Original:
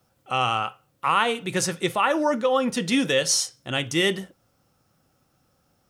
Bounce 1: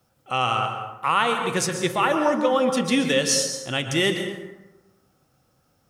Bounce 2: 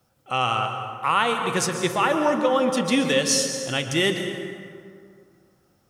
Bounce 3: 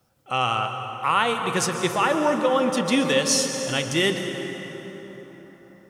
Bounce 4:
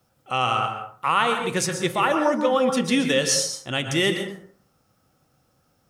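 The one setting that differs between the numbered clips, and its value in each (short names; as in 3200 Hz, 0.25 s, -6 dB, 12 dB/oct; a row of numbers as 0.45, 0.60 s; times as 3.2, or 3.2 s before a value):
plate-style reverb, RT60: 1.1, 2.3, 4.8, 0.52 s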